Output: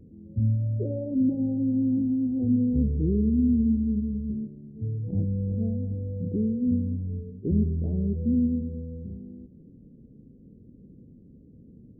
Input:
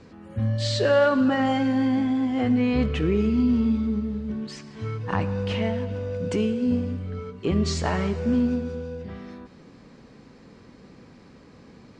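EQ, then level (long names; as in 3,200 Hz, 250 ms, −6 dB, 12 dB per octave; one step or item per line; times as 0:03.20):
Gaussian smoothing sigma 25 samples
+2.0 dB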